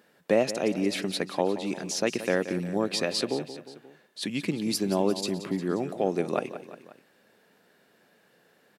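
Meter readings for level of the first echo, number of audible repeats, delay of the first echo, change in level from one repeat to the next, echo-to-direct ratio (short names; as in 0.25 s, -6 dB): -13.0 dB, 3, 0.177 s, -4.5 dB, -11.5 dB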